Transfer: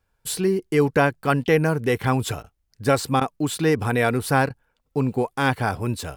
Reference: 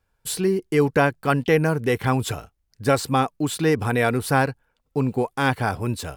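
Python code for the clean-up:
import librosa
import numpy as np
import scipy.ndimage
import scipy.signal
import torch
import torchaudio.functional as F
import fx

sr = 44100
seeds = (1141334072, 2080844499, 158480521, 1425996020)

y = fx.fix_interpolate(x, sr, at_s=(2.43, 3.2, 4.49), length_ms=11.0)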